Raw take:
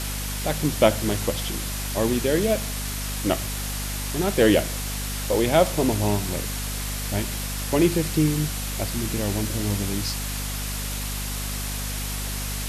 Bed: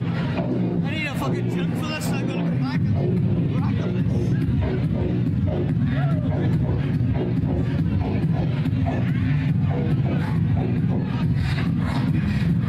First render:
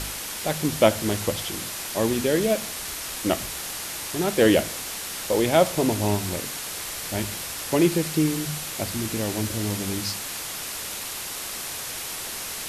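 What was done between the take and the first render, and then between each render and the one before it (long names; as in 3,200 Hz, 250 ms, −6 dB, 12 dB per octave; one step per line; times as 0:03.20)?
hum removal 50 Hz, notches 5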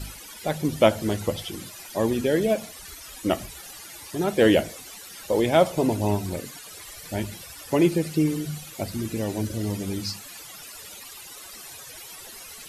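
broadband denoise 15 dB, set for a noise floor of −33 dBFS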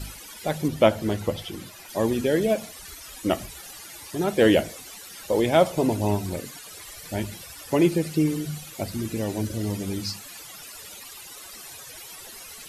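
0:00.68–0:01.89: parametric band 8,800 Hz −5.5 dB 1.8 octaves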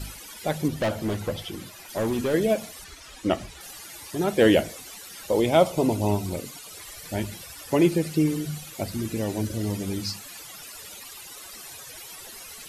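0:00.73–0:02.34: hard clipping −21.5 dBFS
0:02.84–0:03.61: high-frequency loss of the air 56 metres
0:05.33–0:06.75: parametric band 1,700 Hz −10 dB 0.23 octaves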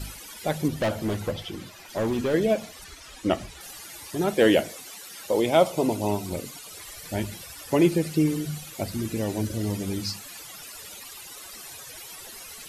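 0:01.31–0:02.82: parametric band 11,000 Hz −7 dB 0.98 octaves
0:04.34–0:06.31: high-pass filter 190 Hz 6 dB per octave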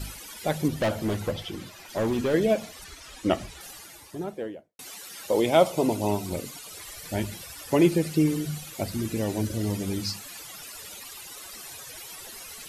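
0:03.53–0:04.79: fade out and dull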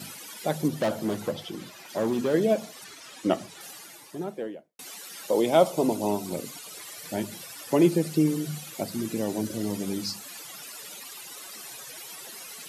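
high-pass filter 140 Hz 24 dB per octave
dynamic equaliser 2,300 Hz, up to −5 dB, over −45 dBFS, Q 1.2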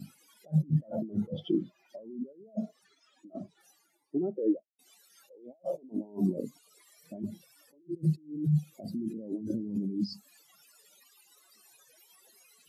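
compressor whose output falls as the input rises −35 dBFS, ratio −1
every bin expanded away from the loudest bin 2.5 to 1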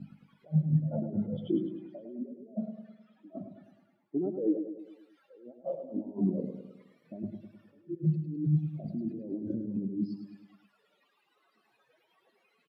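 high-frequency loss of the air 470 metres
repeating echo 104 ms, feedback 52%, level −8 dB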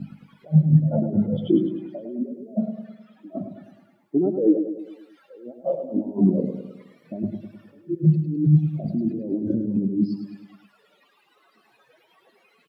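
level +10.5 dB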